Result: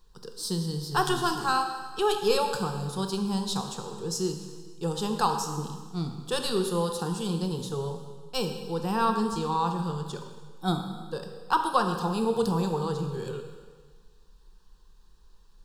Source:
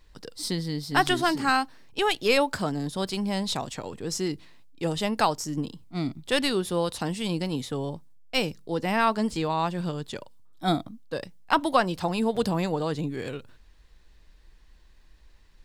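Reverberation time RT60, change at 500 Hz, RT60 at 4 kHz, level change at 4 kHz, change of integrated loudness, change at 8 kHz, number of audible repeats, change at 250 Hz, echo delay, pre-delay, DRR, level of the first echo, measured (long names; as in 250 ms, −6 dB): 1.5 s, −1.0 dB, 1.5 s, −3.0 dB, −1.5 dB, +0.5 dB, no echo audible, −2.0 dB, no echo audible, 19 ms, 5.0 dB, no echo audible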